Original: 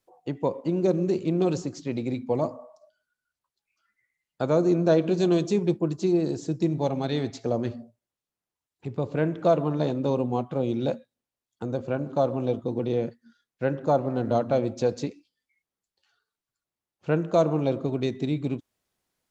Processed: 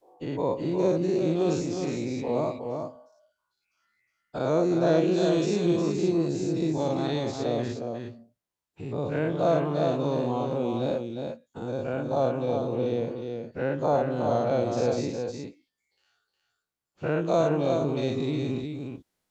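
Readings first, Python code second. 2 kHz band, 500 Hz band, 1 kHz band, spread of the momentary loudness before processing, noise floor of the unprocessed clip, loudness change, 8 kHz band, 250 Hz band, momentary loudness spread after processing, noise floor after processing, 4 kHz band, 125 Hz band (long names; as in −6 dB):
+1.5 dB, 0.0 dB, +0.5 dB, 10 LU, below −85 dBFS, −1.0 dB, can't be measured, −1.0 dB, 11 LU, −82 dBFS, +2.0 dB, −1.5 dB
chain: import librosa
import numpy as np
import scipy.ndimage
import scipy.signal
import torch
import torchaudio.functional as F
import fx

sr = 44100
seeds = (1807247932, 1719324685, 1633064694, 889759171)

y = fx.spec_dilate(x, sr, span_ms=120)
y = y + 10.0 ** (-5.5 / 20.0) * np.pad(y, (int(361 * sr / 1000.0), 0))[:len(y)]
y = y * 10.0 ** (-6.0 / 20.0)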